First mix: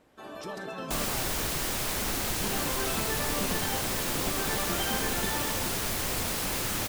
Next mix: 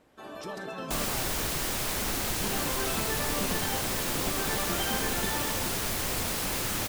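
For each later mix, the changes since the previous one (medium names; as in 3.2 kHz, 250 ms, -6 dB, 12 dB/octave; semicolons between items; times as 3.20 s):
no change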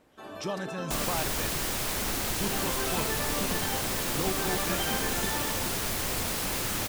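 speech +8.5 dB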